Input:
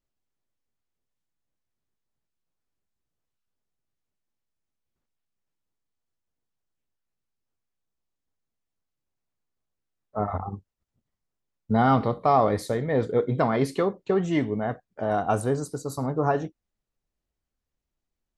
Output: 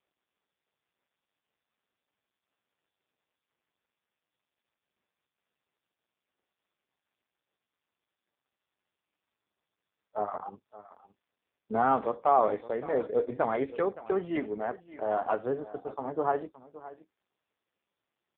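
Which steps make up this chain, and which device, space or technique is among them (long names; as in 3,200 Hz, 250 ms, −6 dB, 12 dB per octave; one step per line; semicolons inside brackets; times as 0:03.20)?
satellite phone (band-pass filter 350–3,400 Hz; single-tap delay 569 ms −17 dB; level −2 dB; AMR narrowband 5.15 kbit/s 8,000 Hz)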